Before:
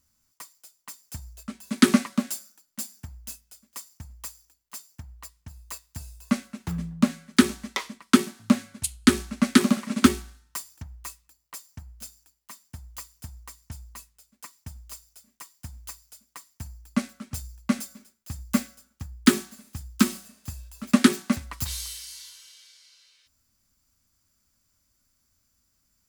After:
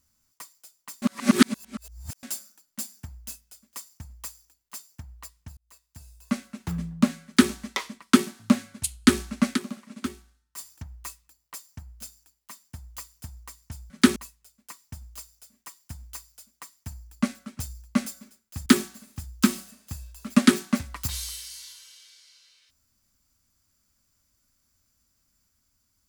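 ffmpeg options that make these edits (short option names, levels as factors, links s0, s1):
-filter_complex "[0:a]asplit=9[s0][s1][s2][s3][s4][s5][s6][s7][s8];[s0]atrim=end=1.022[s9];[s1]atrim=start=1.018:end=2.232,asetpts=PTS-STARTPTS,areverse[s10];[s2]atrim=start=2.228:end=5.57,asetpts=PTS-STARTPTS,afade=t=out:st=3.338:d=0.004:c=hsin[s11];[s3]atrim=start=5.57:end=9.69,asetpts=PTS-STARTPTS,afade=t=in:d=1.09,afade=t=out:st=3.97:d=0.15:c=exp:silence=0.188365[s12];[s4]atrim=start=9.69:end=10.44,asetpts=PTS-STARTPTS,volume=0.188[s13];[s5]atrim=start=10.44:end=13.902,asetpts=PTS-STARTPTS,afade=t=in:d=0.15:c=exp:silence=0.188365[s14];[s6]atrim=start=7.248:end=7.512[s15];[s7]atrim=start=13.898:end=18.402[s16];[s8]atrim=start=19.228[s17];[s9][s10]acrossfade=d=0.004:c1=hsin:c2=hsin[s18];[s11][s12][s13][s14]concat=n=4:v=0:a=1[s19];[s18][s19]acrossfade=d=0.004:c1=hsin:c2=hsin[s20];[s20][s15]acrossfade=d=0.004:c1=hsin:c2=hsin[s21];[s21][s16]acrossfade=d=0.004:c1=hsin:c2=hsin[s22];[s22][s17]acrossfade=d=0.004:c1=hsin:c2=hsin"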